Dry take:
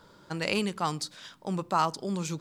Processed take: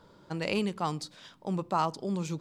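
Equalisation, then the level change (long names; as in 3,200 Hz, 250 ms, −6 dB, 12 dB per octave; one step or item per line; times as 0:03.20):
parametric band 1,500 Hz −4.5 dB 0.86 octaves
high-shelf EQ 3,700 Hz −8.5 dB
0.0 dB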